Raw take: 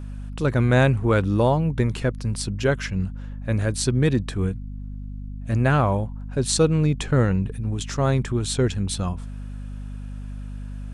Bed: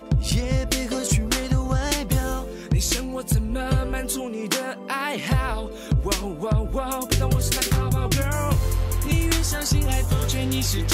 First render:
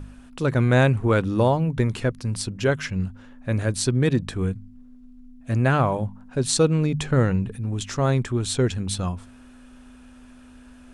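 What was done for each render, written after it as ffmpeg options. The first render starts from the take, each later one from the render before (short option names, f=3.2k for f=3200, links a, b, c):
-af "bandreject=f=50:t=h:w=4,bandreject=f=100:t=h:w=4,bandreject=f=150:t=h:w=4,bandreject=f=200:t=h:w=4"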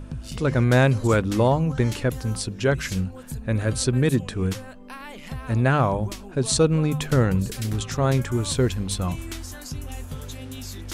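-filter_complex "[1:a]volume=-13dB[a];[0:a][a]amix=inputs=2:normalize=0"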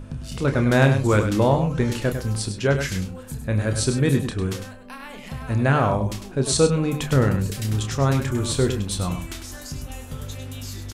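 -filter_complex "[0:a]asplit=2[a][b];[b]adelay=29,volume=-8dB[c];[a][c]amix=inputs=2:normalize=0,asplit=2[d][e];[e]aecho=0:1:101:0.376[f];[d][f]amix=inputs=2:normalize=0"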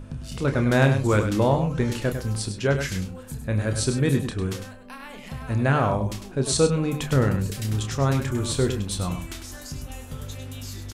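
-af "volume=-2dB"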